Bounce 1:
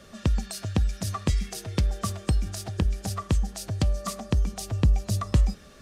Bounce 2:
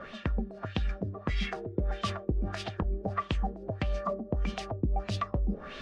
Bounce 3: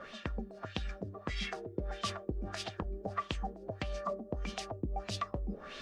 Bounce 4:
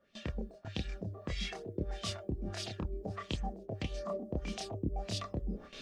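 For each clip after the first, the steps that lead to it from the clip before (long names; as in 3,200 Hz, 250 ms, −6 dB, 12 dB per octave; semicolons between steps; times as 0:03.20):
parametric band 83 Hz −9 dB 2.4 octaves; reversed playback; downward compressor 5 to 1, threshold −37 dBFS, peak gain reduction 14.5 dB; reversed playback; auto-filter low-pass sine 1.6 Hz 340–3,300 Hz; level +8.5 dB
bass and treble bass −5 dB, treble +8 dB; level −4 dB
multi-voice chorus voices 2, 0.58 Hz, delay 28 ms, depth 1 ms; parametric band 1,200 Hz −9.5 dB 1.6 octaves; noise gate with hold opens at −43 dBFS; level +5 dB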